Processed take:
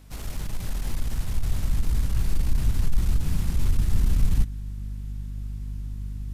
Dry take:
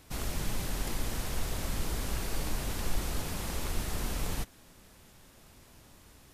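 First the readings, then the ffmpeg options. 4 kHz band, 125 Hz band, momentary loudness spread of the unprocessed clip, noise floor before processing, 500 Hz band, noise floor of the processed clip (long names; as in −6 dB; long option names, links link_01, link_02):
−3.0 dB, +11.5 dB, 1 LU, −57 dBFS, −4.5 dB, −34 dBFS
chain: -af "aeval=exprs='0.126*(cos(1*acos(clip(val(0)/0.126,-1,1)))-cos(1*PI/2))+0.0355*(cos(5*acos(clip(val(0)/0.126,-1,1)))-cos(5*PI/2))+0.00501*(cos(7*acos(clip(val(0)/0.126,-1,1)))-cos(7*PI/2))+0.00891*(cos(8*acos(clip(val(0)/0.126,-1,1)))-cos(8*PI/2))':channel_layout=same,aeval=exprs='val(0)+0.01*(sin(2*PI*50*n/s)+sin(2*PI*2*50*n/s)/2+sin(2*PI*3*50*n/s)/3+sin(2*PI*4*50*n/s)/4+sin(2*PI*5*50*n/s)/5)':channel_layout=same,asubboost=boost=9:cutoff=190,volume=-8dB"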